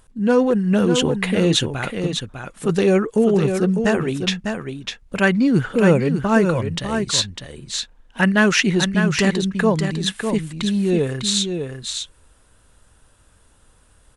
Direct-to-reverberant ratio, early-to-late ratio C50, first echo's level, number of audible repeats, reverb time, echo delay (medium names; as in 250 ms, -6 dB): no reverb, no reverb, -6.5 dB, 1, no reverb, 601 ms